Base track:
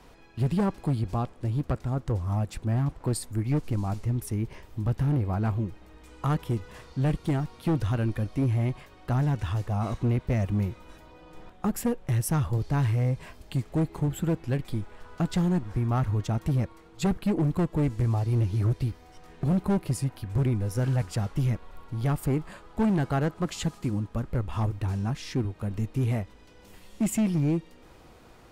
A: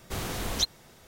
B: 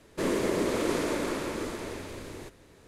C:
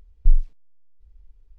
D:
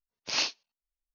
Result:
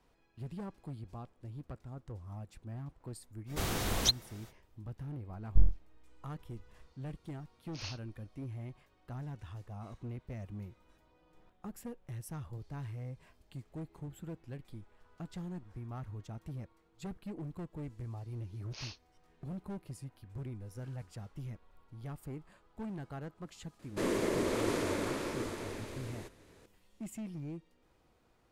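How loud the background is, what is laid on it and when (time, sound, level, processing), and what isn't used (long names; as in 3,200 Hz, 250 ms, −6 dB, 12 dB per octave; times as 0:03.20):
base track −17.5 dB
0:03.46: mix in A −1 dB, fades 0.05 s
0:05.30: mix in C −7.5 dB + full-wave rectification
0:07.46: mix in D −16.5 dB
0:18.45: mix in D −16 dB + brickwall limiter −18 dBFS
0:23.79: mix in B −4.5 dB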